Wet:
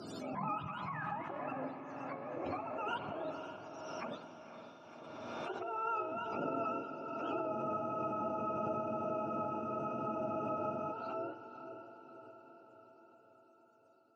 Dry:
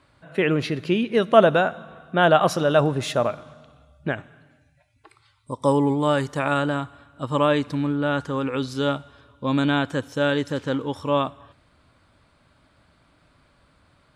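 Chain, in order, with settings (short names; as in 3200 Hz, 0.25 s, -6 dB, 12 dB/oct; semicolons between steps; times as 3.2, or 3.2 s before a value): spectrum mirrored in octaves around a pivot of 620 Hz; Doppler pass-by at 3.58, 5 m/s, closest 5.7 m; band shelf 2400 Hz -10.5 dB 1.2 oct; negative-ratio compressor -33 dBFS, ratio -1; BPF 260–7600 Hz; diffused feedback echo 0.521 s, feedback 61%, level -8.5 dB; spring tank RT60 1.4 s, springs 41/53/57 ms, chirp 30 ms, DRR 11.5 dB; spectral freeze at 7.52, 3.40 s; backwards sustainer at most 25 dB/s; gain -6.5 dB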